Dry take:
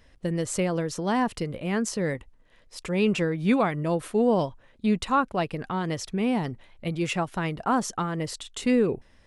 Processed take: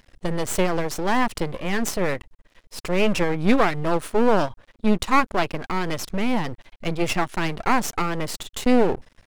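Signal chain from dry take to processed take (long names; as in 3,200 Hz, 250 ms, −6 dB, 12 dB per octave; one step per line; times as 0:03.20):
half-wave rectification
level +8.5 dB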